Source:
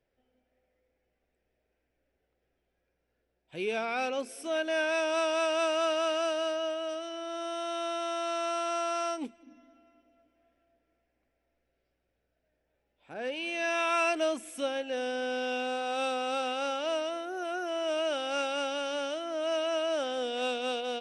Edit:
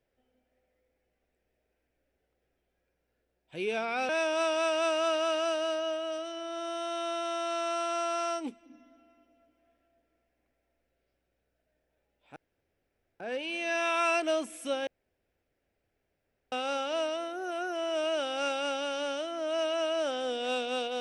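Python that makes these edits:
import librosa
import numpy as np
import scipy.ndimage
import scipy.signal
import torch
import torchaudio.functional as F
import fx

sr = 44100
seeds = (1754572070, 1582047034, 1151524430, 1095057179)

y = fx.edit(x, sr, fx.cut(start_s=4.09, length_s=0.77),
    fx.insert_room_tone(at_s=13.13, length_s=0.84),
    fx.room_tone_fill(start_s=14.8, length_s=1.65), tone=tone)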